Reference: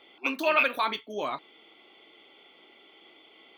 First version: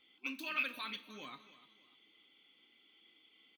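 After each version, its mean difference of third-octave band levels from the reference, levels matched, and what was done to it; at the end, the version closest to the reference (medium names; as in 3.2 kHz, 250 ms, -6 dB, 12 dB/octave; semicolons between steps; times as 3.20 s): 4.5 dB: amplifier tone stack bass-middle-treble 6-0-2; comb 3.9 ms, depth 32%; feedback delay 296 ms, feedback 33%, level -16 dB; Schroeder reverb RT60 0.95 s, combs from 30 ms, DRR 15.5 dB; trim +6 dB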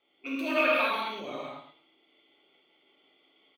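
7.0 dB: gate -48 dBFS, range -8 dB; rotary cabinet horn 1.1 Hz, later 6 Hz, at 1.68 s; feedback delay 111 ms, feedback 16%, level -10 dB; gated-style reverb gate 260 ms flat, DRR -6.5 dB; trim -7.5 dB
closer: first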